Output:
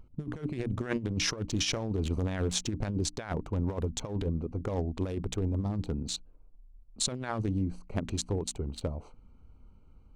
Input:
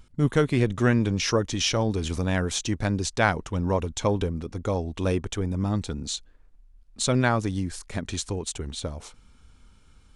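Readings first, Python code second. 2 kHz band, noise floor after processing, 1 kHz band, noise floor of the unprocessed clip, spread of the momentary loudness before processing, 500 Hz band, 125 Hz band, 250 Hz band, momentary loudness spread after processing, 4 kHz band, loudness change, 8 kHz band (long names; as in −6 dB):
−11.5 dB, −56 dBFS, −12.0 dB, −55 dBFS, 10 LU, −9.0 dB, −6.0 dB, −7.0 dB, 6 LU, −4.5 dB, −6.5 dB, −4.0 dB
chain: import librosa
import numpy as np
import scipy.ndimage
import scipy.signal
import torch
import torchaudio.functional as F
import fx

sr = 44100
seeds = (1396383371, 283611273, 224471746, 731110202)

y = fx.wiener(x, sr, points=25)
y = fx.hum_notches(y, sr, base_hz=60, count=5)
y = fx.over_compress(y, sr, threshold_db=-27.0, ratio=-0.5)
y = y * librosa.db_to_amplitude(-3.0)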